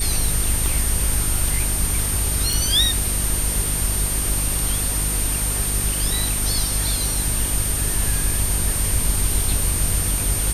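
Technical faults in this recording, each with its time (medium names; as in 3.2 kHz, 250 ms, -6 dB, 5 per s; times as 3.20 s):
crackle 29 per s -26 dBFS
hum 50 Hz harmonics 8 -26 dBFS
whine 8.8 kHz -24 dBFS
0.66 s: pop
2.53 s: pop
7.15 s: dropout 2.2 ms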